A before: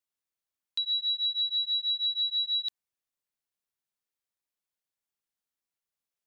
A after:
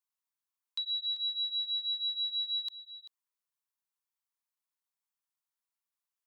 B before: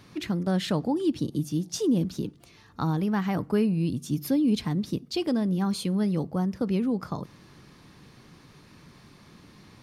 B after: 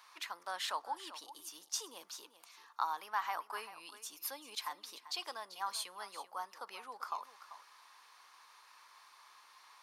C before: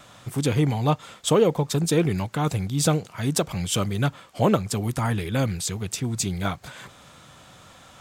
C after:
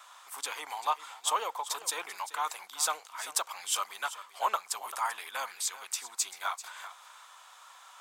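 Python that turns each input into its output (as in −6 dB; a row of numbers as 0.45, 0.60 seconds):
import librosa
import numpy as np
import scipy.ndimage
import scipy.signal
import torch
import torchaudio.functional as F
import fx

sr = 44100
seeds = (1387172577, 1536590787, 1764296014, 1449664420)

p1 = fx.ladder_highpass(x, sr, hz=860.0, resonance_pct=55)
p2 = fx.high_shelf(p1, sr, hz=5200.0, db=6.5)
p3 = p2 + fx.echo_single(p2, sr, ms=390, db=-14.0, dry=0)
y = p3 * librosa.db_to_amplitude(2.5)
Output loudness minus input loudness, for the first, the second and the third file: −4.5, −14.5, −9.0 LU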